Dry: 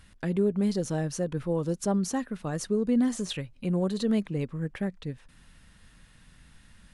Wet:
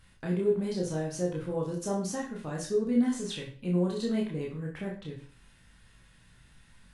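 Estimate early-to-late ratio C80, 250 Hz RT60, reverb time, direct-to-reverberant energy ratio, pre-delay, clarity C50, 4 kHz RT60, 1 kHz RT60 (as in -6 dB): 11.5 dB, 0.40 s, 0.40 s, -3.0 dB, 17 ms, 6.5 dB, 0.40 s, 0.40 s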